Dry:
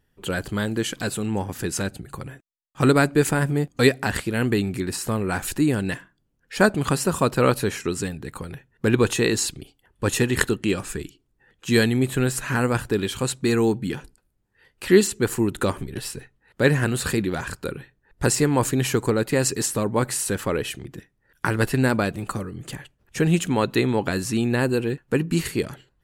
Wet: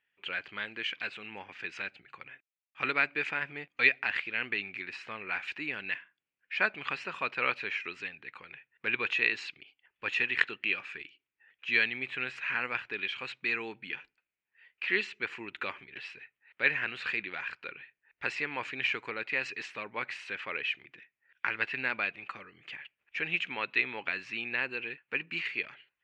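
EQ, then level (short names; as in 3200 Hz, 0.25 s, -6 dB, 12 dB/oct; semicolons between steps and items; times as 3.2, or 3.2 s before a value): band-pass 2400 Hz, Q 4.4; air absorption 210 m; +8.0 dB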